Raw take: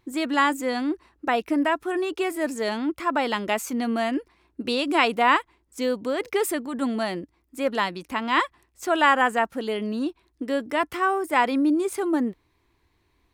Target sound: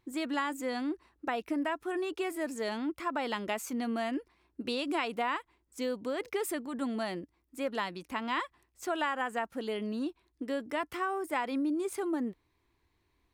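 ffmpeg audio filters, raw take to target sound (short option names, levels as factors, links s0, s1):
-af "acompressor=threshold=0.0891:ratio=6,volume=0.447"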